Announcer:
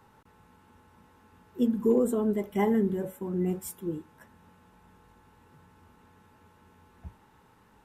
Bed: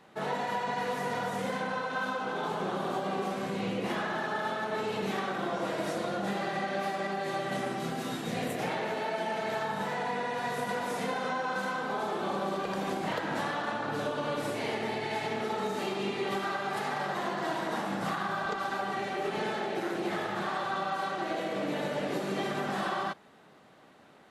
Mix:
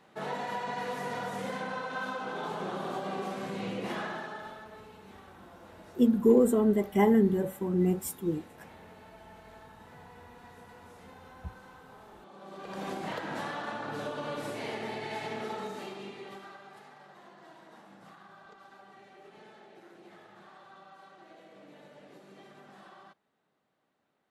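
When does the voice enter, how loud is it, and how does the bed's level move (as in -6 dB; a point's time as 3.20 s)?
4.40 s, +2.5 dB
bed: 4.05 s -3 dB
4.95 s -21 dB
12.29 s -21 dB
12.83 s -4 dB
15.49 s -4 dB
16.95 s -21 dB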